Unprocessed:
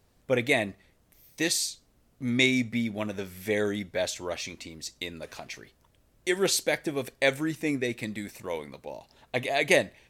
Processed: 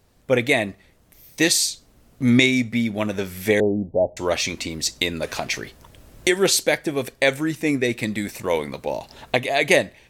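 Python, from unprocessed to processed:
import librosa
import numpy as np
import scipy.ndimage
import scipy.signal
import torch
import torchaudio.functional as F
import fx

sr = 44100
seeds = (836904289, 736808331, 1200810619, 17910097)

y = fx.recorder_agc(x, sr, target_db=-11.5, rise_db_per_s=5.2, max_gain_db=30)
y = fx.steep_lowpass(y, sr, hz=870.0, slope=72, at=(3.6, 4.17))
y = F.gain(torch.from_numpy(y), 5.0).numpy()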